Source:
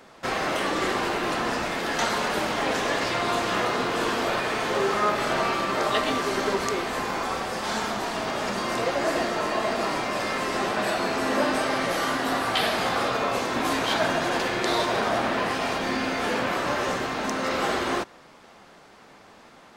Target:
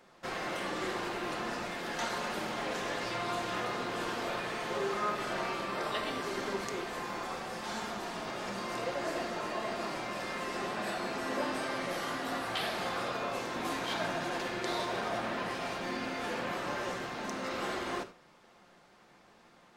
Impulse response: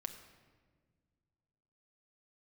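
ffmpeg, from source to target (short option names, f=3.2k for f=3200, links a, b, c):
-filter_complex "[0:a]asettb=1/sr,asplit=3[a][b][c];[a]atrim=end=5.674[d];[b]atrim=start=5.67:end=6.23,asetpts=PTS-STARTPTS,afade=t=in:d=0.004:c=qsin,afade=t=out:st=0.556:d=0.004:c=qsin,bandreject=f=6.6k:w=7.2[e];[c]atrim=start=6.226[f];[d][e]acrossfade=d=0.004:c1=hsin:c2=qsin[g];[g][f]acrossfade=d=0.004:c1=qsin:c2=hsin[h];[1:a]atrim=start_sample=2205,atrim=end_sample=4410[i];[h][i]afir=irnorm=-1:irlink=0,volume=-7.5dB"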